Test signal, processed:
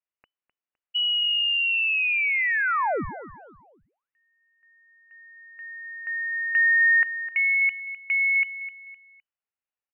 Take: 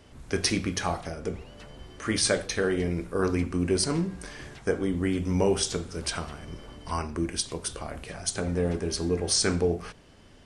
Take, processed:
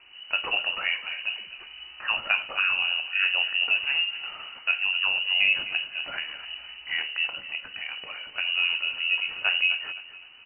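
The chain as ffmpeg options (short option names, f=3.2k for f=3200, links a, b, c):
-filter_complex "[0:a]asplit=2[a][b];[b]aecho=0:1:256|512|768:0.2|0.0698|0.0244[c];[a][c]amix=inputs=2:normalize=0,lowpass=f=2.6k:t=q:w=0.5098,lowpass=f=2.6k:t=q:w=0.6013,lowpass=f=2.6k:t=q:w=0.9,lowpass=f=2.6k:t=q:w=2.563,afreqshift=-3000,volume=1dB"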